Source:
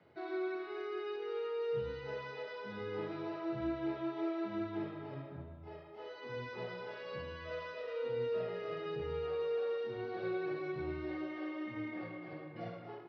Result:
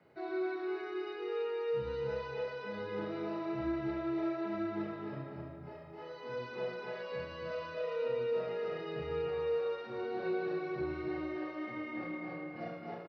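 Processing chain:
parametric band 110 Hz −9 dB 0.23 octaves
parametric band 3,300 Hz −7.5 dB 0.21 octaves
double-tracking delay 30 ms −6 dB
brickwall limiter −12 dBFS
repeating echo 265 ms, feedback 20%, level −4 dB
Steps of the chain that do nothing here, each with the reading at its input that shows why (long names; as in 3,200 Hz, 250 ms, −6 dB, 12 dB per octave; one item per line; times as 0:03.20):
brickwall limiter −12 dBFS: peak of its input −25.0 dBFS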